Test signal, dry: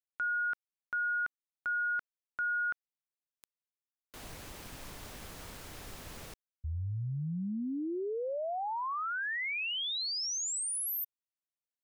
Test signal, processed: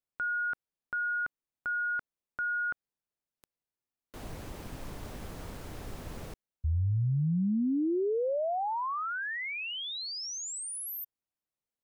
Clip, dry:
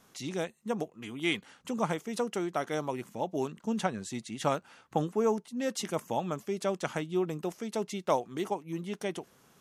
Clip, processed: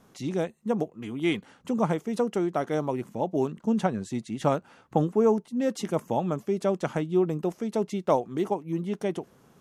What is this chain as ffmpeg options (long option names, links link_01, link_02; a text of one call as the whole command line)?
ffmpeg -i in.wav -af "tiltshelf=frequency=1100:gain=5.5,volume=2dB" out.wav